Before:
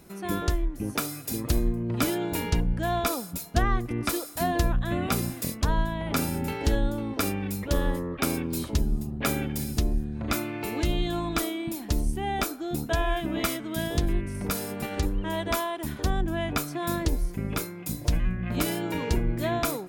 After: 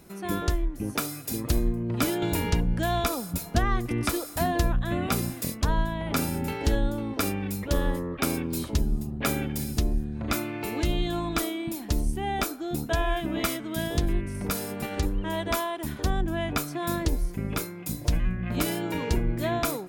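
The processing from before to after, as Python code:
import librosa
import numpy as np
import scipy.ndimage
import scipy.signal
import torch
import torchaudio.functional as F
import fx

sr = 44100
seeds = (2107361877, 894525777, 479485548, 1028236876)

y = fx.band_squash(x, sr, depth_pct=70, at=(2.22, 4.46))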